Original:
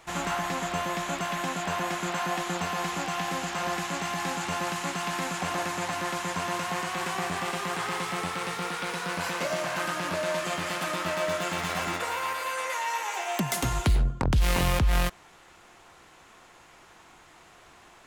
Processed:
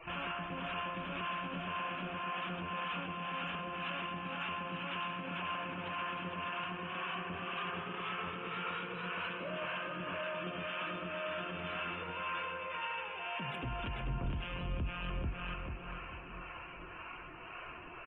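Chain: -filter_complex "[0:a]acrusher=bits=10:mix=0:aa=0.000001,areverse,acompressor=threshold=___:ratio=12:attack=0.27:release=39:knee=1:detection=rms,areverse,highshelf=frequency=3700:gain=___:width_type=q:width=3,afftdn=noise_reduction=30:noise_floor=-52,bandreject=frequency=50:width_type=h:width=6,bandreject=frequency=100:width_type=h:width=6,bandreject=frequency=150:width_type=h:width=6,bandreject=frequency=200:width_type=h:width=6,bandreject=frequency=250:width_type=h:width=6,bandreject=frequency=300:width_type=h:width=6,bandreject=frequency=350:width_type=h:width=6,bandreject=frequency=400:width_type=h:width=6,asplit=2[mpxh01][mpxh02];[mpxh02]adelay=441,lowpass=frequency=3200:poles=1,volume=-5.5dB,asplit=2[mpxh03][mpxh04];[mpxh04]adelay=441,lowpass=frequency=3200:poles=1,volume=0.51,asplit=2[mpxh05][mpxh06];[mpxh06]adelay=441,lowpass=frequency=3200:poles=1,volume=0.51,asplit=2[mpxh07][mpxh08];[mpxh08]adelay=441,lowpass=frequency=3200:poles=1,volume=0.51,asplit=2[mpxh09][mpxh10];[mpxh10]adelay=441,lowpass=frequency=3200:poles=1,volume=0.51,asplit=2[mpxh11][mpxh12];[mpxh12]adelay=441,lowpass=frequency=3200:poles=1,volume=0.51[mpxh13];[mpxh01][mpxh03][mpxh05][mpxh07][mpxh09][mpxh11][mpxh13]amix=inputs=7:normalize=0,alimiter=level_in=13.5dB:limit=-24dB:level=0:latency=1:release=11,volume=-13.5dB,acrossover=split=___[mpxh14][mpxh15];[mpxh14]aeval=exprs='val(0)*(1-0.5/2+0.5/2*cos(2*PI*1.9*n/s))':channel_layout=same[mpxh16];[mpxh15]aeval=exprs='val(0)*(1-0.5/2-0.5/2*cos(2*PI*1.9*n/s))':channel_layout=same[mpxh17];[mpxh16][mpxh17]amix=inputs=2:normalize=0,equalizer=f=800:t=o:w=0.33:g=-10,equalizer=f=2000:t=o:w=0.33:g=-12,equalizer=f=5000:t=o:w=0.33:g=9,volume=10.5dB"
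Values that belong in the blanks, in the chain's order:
-36dB, -11.5, 590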